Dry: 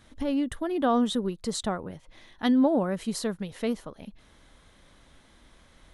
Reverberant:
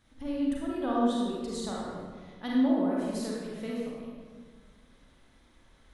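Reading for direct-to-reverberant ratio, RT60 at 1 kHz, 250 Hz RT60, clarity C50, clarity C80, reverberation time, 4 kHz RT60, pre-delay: -5.0 dB, 1.5 s, 1.9 s, -3.0 dB, 0.0 dB, 1.6 s, 1.0 s, 32 ms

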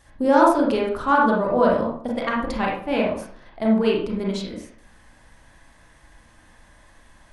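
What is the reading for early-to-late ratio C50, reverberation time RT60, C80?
2.5 dB, 0.55 s, 7.5 dB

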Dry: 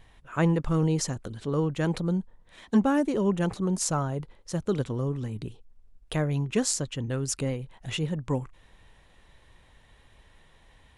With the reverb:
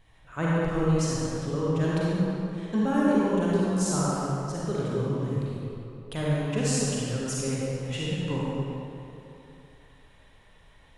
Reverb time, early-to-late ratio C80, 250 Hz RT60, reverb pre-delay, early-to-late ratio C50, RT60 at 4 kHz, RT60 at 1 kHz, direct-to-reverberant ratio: 2.8 s, -3.5 dB, 2.7 s, 36 ms, -5.5 dB, 1.8 s, 2.9 s, -7.0 dB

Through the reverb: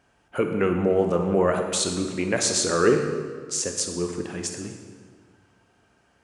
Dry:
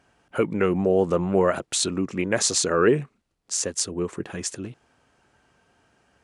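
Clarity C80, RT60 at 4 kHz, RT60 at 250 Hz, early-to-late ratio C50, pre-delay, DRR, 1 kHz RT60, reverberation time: 7.0 dB, 1.3 s, 1.8 s, 5.5 dB, 23 ms, 4.0 dB, 1.7 s, 1.7 s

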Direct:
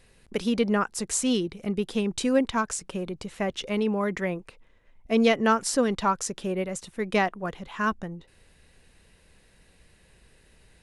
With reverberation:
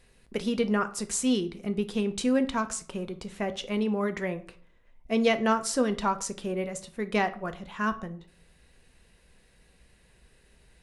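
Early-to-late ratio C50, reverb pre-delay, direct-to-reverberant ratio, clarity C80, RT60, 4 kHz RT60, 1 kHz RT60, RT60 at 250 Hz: 16.0 dB, 3 ms, 9.0 dB, 20.0 dB, 0.50 s, 0.35 s, 0.45 s, 0.60 s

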